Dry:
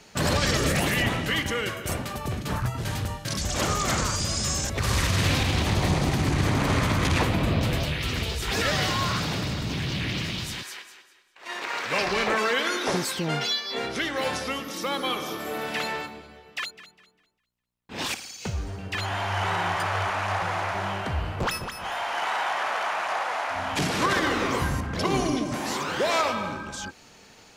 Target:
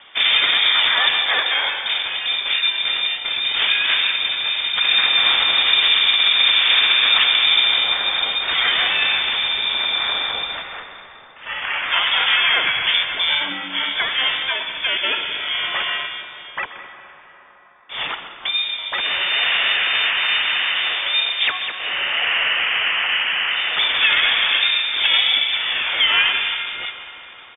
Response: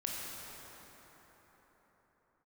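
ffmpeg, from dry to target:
-filter_complex "[0:a]acrossover=split=2800[a][b];[b]acompressor=threshold=-39dB:ratio=4:attack=1:release=60[c];[a][c]amix=inputs=2:normalize=0,lowpass=f=3.1k:t=q:w=0.5098,lowpass=f=3.1k:t=q:w=0.6013,lowpass=f=3.1k:t=q:w=0.9,lowpass=f=3.1k:t=q:w=2.563,afreqshift=-3700,asplit=2[d][e];[1:a]atrim=start_sample=2205,highshelf=f=8k:g=-9,adelay=127[f];[e][f]afir=irnorm=-1:irlink=0,volume=-11dB[g];[d][g]amix=inputs=2:normalize=0,asplit=2[h][i];[i]asetrate=29433,aresample=44100,atempo=1.49831,volume=-7dB[j];[h][j]amix=inputs=2:normalize=0,volume=7dB"

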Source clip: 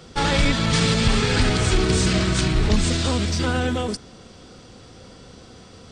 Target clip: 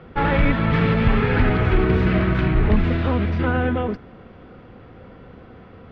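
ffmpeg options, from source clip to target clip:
-af "lowpass=f=2.3k:w=0.5412,lowpass=f=2.3k:w=1.3066,volume=2dB"

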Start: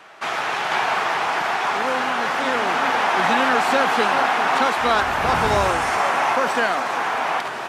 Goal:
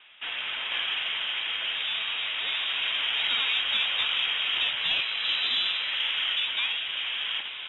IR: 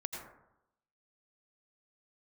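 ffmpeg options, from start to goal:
-af "lowpass=f=3.4k:t=q:w=0.5098,lowpass=f=3.4k:t=q:w=0.6013,lowpass=f=3.4k:t=q:w=0.9,lowpass=f=3.4k:t=q:w=2.563,afreqshift=-4000,aeval=exprs='0.562*(cos(1*acos(clip(val(0)/0.562,-1,1)))-cos(1*PI/2))+0.01*(cos(2*acos(clip(val(0)/0.562,-1,1)))-cos(2*PI/2))':c=same,volume=-8.5dB"

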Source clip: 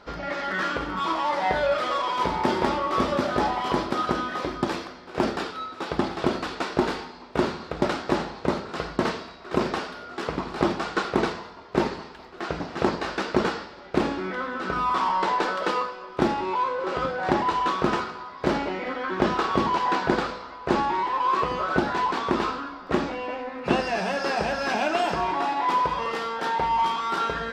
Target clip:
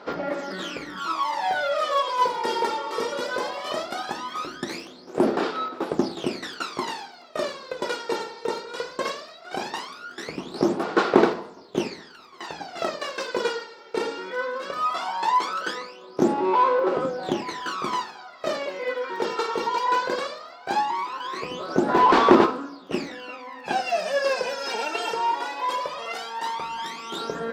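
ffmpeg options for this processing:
-filter_complex "[0:a]aphaser=in_gain=1:out_gain=1:delay=2.2:decay=0.78:speed=0.18:type=sinusoidal,highpass=360,highshelf=f=3.2k:g=10.5,asplit=3[a][b][c];[a]afade=t=out:st=21.88:d=0.02[d];[b]acontrast=38,afade=t=in:st=21.88:d=0.02,afade=t=out:st=22.45:d=0.02[e];[c]afade=t=in:st=22.45:d=0.02[f];[d][e][f]amix=inputs=3:normalize=0,lowshelf=f=470:g=11,volume=-9dB"

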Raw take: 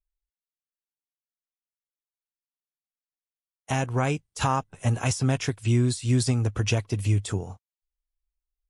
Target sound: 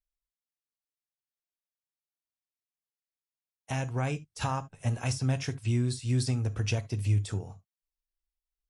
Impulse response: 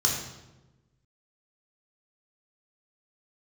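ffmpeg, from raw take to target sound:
-filter_complex "[0:a]asplit=2[a][b];[1:a]atrim=start_sample=2205,atrim=end_sample=3528[c];[b][c]afir=irnorm=-1:irlink=0,volume=-21.5dB[d];[a][d]amix=inputs=2:normalize=0,volume=-6.5dB"

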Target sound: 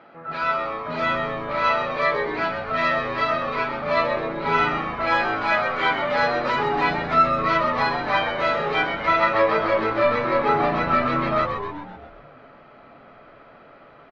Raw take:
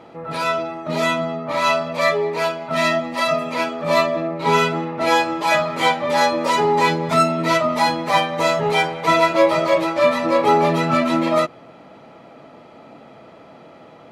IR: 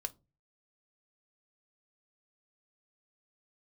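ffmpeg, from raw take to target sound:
-filter_complex "[0:a]highpass=210,equalizer=f=300:t=q:w=4:g=-6,equalizer=f=450:t=q:w=4:g=-7,equalizer=f=920:t=q:w=4:g=-5,equalizer=f=1.5k:t=q:w=4:g=10,equalizer=f=3.5k:t=q:w=4:g=-5,lowpass=f=4.1k:w=0.5412,lowpass=f=4.1k:w=1.3066,asplit=9[a][b][c][d][e][f][g][h][i];[b]adelay=129,afreqshift=-110,volume=-7dB[j];[c]adelay=258,afreqshift=-220,volume=-11.3dB[k];[d]adelay=387,afreqshift=-330,volume=-15.6dB[l];[e]adelay=516,afreqshift=-440,volume=-19.9dB[m];[f]adelay=645,afreqshift=-550,volume=-24.2dB[n];[g]adelay=774,afreqshift=-660,volume=-28.5dB[o];[h]adelay=903,afreqshift=-770,volume=-32.8dB[p];[i]adelay=1032,afreqshift=-880,volume=-37.1dB[q];[a][j][k][l][m][n][o][p][q]amix=inputs=9:normalize=0,asplit=2[r][s];[1:a]atrim=start_sample=2205,adelay=7[t];[s][t]afir=irnorm=-1:irlink=0,volume=-11dB[u];[r][u]amix=inputs=2:normalize=0,volume=-4dB"

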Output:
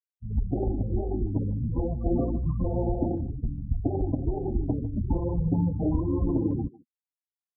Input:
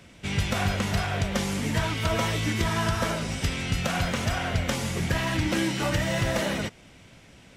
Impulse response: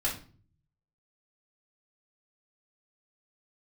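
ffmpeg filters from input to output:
-filter_complex "[0:a]lowpass=1.3k,afftfilt=real='re*gte(hypot(re,im),0.0501)':imag='im*gte(hypot(re,im),0.0501)':win_size=1024:overlap=0.75,adynamicequalizer=threshold=0.00631:dfrequency=480:dqfactor=1.2:tfrequency=480:tqfactor=1.2:attack=5:release=100:ratio=0.375:range=3:mode=boostabove:tftype=bell,asetrate=23361,aresample=44100,atempo=1.88775,asplit=2[a][b];[b]adelay=150,highpass=300,lowpass=3.4k,asoftclip=type=hard:threshold=-19dB,volume=-17dB[c];[a][c]amix=inputs=2:normalize=0"

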